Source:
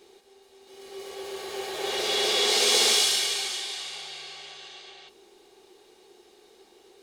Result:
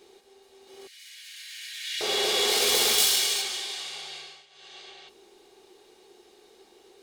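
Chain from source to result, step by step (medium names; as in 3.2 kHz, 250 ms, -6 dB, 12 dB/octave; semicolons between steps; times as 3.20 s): self-modulated delay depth 0.069 ms; 0.87–2.01 s: steep high-pass 1.7 kHz 48 dB/octave; 2.98–3.42 s: treble shelf 5.1 kHz +5.5 dB; 4.16–4.80 s: dip -15.5 dB, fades 0.30 s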